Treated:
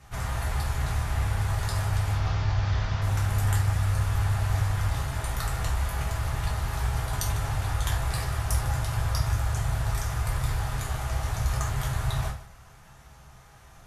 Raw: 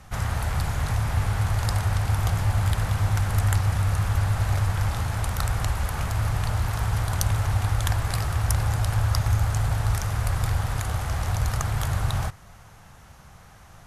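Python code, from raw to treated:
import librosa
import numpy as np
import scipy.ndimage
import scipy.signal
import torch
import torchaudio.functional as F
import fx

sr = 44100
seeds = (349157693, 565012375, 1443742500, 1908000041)

y = fx.cvsd(x, sr, bps=32000, at=(2.13, 3.02))
y = y + 10.0 ** (-16.0 / 20.0) * np.pad(y, (int(151 * sr / 1000.0), 0))[:len(y)]
y = fx.rev_gated(y, sr, seeds[0], gate_ms=120, shape='falling', drr_db=-3.5)
y = y * 10.0 ** (-7.5 / 20.0)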